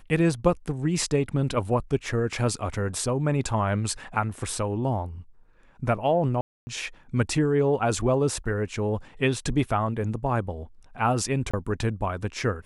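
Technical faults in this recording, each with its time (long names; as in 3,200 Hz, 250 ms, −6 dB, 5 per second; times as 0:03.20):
0:06.41–0:06.67: drop-out 260 ms
0:11.51–0:11.54: drop-out 25 ms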